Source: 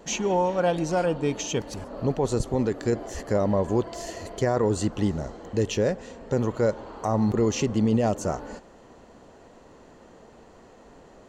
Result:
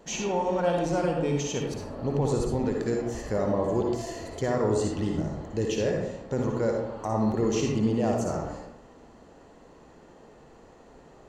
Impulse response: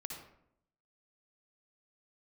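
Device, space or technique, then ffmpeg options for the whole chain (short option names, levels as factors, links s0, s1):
bathroom: -filter_complex "[1:a]atrim=start_sample=2205[s0];[0:a][s0]afir=irnorm=-1:irlink=0"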